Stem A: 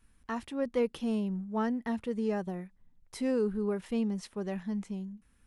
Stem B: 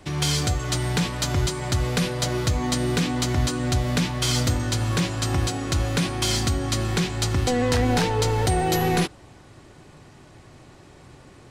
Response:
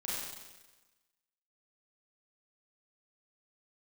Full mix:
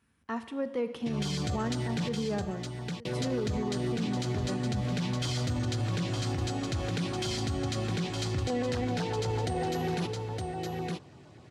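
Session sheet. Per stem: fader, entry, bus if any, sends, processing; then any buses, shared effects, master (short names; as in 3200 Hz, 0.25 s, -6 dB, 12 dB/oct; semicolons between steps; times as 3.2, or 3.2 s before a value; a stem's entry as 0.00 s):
-0.5 dB, 0.00 s, send -13.5 dB, echo send -17.5 dB, dry
-4.0 dB, 1.00 s, muted 2.09–3.05, send -20.5 dB, echo send -8.5 dB, high shelf 11000 Hz -8.5 dB; LFO notch saw down 8 Hz 850–2600 Hz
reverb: on, RT60 1.2 s, pre-delay 31 ms
echo: echo 0.914 s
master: HPF 78 Hz 24 dB/oct; high shelf 7900 Hz -11 dB; limiter -23 dBFS, peak gain reduction 10 dB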